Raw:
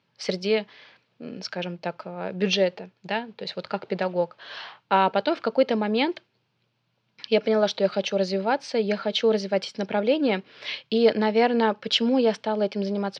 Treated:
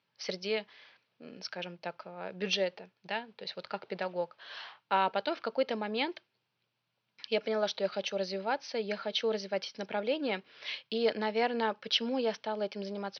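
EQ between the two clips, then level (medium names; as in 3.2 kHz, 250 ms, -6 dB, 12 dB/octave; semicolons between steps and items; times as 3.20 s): brick-wall FIR low-pass 6.3 kHz; bass shelf 440 Hz -8.5 dB; -6.0 dB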